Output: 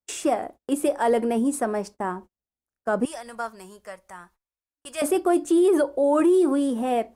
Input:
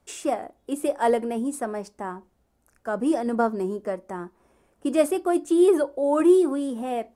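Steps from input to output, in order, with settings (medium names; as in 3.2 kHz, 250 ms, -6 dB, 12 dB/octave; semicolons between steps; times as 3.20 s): gate -45 dBFS, range -34 dB; 3.05–5.02 s: amplifier tone stack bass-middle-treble 10-0-10; peak limiter -17.5 dBFS, peak gain reduction 9.5 dB; trim +4.5 dB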